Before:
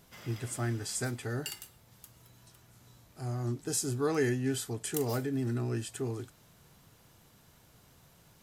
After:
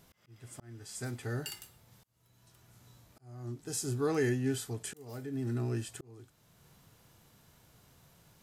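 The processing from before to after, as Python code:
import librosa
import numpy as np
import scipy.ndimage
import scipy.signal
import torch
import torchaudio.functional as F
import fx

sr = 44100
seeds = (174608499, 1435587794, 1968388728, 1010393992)

y = fx.hpss(x, sr, part='percussive', gain_db=-4)
y = fx.auto_swell(y, sr, attack_ms=675.0)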